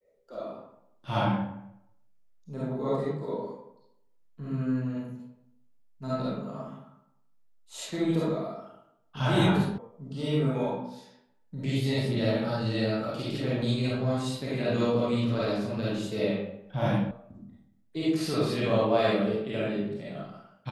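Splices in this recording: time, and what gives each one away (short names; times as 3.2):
9.78 sound cut off
17.11 sound cut off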